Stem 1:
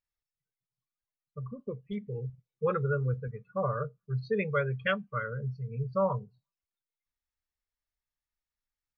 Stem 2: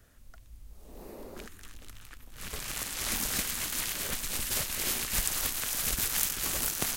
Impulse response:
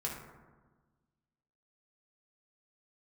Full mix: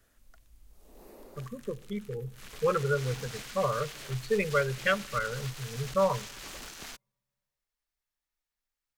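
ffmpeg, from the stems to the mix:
-filter_complex "[0:a]volume=2.5dB,asplit=2[link_01][link_02];[link_02]volume=-22dB[link_03];[1:a]acrossover=split=6400[link_04][link_05];[link_05]acompressor=threshold=-46dB:ratio=4:attack=1:release=60[link_06];[link_04][link_06]amix=inputs=2:normalize=0,asoftclip=type=tanh:threshold=-31.5dB,volume=-4.5dB[link_07];[2:a]atrim=start_sample=2205[link_08];[link_03][link_08]afir=irnorm=-1:irlink=0[link_09];[link_01][link_07][link_09]amix=inputs=3:normalize=0,equalizer=frequency=93:width_type=o:width=2.1:gain=-7"

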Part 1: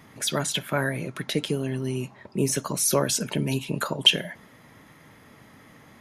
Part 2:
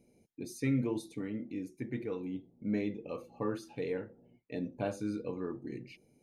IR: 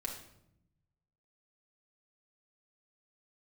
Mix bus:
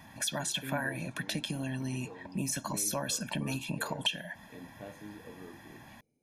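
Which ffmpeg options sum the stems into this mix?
-filter_complex "[0:a]equalizer=frequency=130:width_type=o:width=0.72:gain=-6,aecho=1:1:1.2:0.93,acompressor=threshold=-29dB:ratio=3,volume=-3dB[link_01];[1:a]volume=-11.5dB[link_02];[link_01][link_02]amix=inputs=2:normalize=0"

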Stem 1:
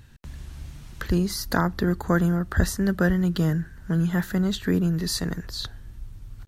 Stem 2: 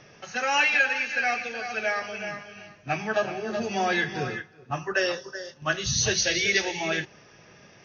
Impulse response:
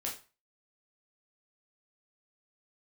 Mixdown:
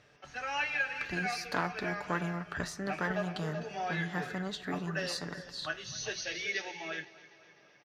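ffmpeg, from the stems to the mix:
-filter_complex "[0:a]lowpass=5900,aeval=exprs='(tanh(4.47*val(0)+0.7)-tanh(0.7))/4.47':channel_layout=same,flanger=delay=8.1:depth=7.9:regen=-85:speed=0.34:shape=triangular,volume=1dB,asplit=2[link_01][link_02];[link_02]volume=-20dB[link_03];[1:a]aemphasis=mode=reproduction:type=50fm,volume=-10dB,asplit=2[link_04][link_05];[link_05]volume=-19dB[link_06];[link_03][link_06]amix=inputs=2:normalize=0,aecho=0:1:254|508|762|1016|1270|1524|1778|2032|2286:1|0.59|0.348|0.205|0.121|0.0715|0.0422|0.0249|0.0147[link_07];[link_01][link_04][link_07]amix=inputs=3:normalize=0,highpass=frequency=440:poles=1,aecho=1:1:6.8:0.32"

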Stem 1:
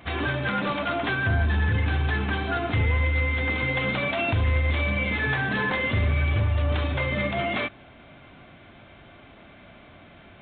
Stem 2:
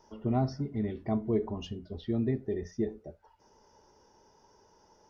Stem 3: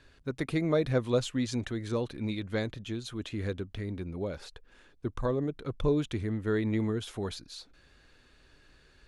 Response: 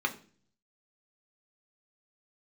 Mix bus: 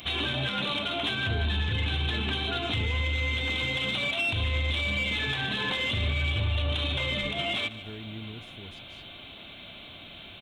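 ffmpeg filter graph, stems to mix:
-filter_complex "[0:a]aexciter=amount=3.5:drive=9.8:freq=2700,volume=-1dB,asplit=2[link_01][link_02];[link_02]volume=-20.5dB[link_03];[1:a]volume=-6.5dB[link_04];[2:a]bass=frequency=250:gain=10,treble=frequency=4000:gain=2,adelay=1400,volume=-17.5dB[link_05];[link_03]aecho=0:1:148|296|444|592|740:1|0.36|0.13|0.0467|0.0168[link_06];[link_01][link_04][link_05][link_06]amix=inputs=4:normalize=0,alimiter=limit=-20dB:level=0:latency=1:release=253"

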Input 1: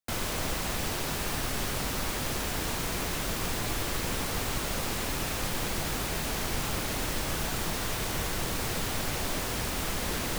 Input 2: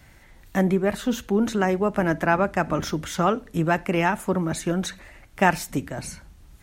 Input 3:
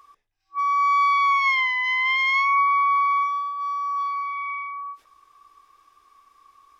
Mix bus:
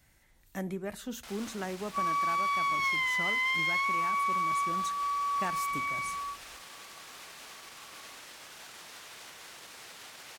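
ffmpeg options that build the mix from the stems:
ffmpeg -i stem1.wav -i stem2.wav -i stem3.wav -filter_complex "[0:a]alimiter=limit=-24dB:level=0:latency=1:release=68,bandpass=frequency=1900:width_type=q:width=0.52:csg=0,adelay=1150,volume=-11.5dB[link_01];[1:a]volume=-15dB[link_02];[2:a]adelay=1400,volume=-4.5dB[link_03];[link_02][link_03]amix=inputs=2:normalize=0,acompressor=threshold=-28dB:ratio=6,volume=0dB[link_04];[link_01][link_04]amix=inputs=2:normalize=0,highshelf=frequency=4400:gain=10" out.wav

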